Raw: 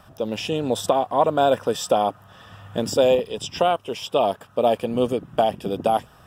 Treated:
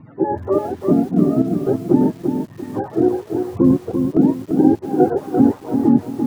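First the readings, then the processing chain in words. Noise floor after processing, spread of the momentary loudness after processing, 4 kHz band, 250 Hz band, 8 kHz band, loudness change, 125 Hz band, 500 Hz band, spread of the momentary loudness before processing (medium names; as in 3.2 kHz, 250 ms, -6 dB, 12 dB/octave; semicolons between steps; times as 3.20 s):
-41 dBFS, 7 LU, under -15 dB, +14.5 dB, under -10 dB, +4.5 dB, +10.5 dB, 0.0 dB, 8 LU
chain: spectrum inverted on a logarithmic axis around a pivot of 430 Hz; low-pass 1 kHz 12 dB/octave; gain riding within 3 dB 0.5 s; square tremolo 1.2 Hz, depth 65%, duty 70%; bit-crushed delay 342 ms, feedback 35%, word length 8-bit, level -6 dB; trim +6.5 dB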